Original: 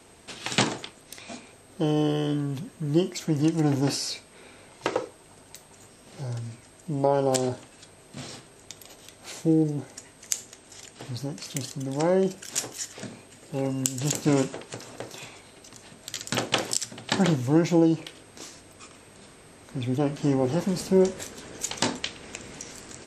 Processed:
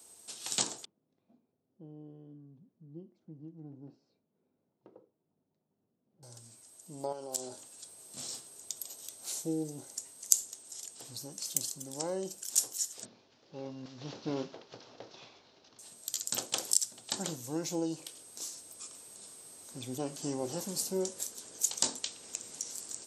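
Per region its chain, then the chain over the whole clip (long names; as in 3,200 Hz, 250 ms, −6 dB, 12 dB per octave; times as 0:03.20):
0:00.85–0:06.23: resonant band-pass 180 Hz, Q 1.5 + high-frequency loss of the air 220 metres
0:07.12–0:07.57: high-pass filter 150 Hz + downward compressor 4 to 1, threshold −25 dBFS
0:13.05–0:15.79: variable-slope delta modulation 32 kbit/s + high-frequency loss of the air 220 metres
whole clip: spectral tilt +4 dB per octave; speech leveller within 4 dB 2 s; parametric band 2,100 Hz −13.5 dB 1.7 octaves; level −8 dB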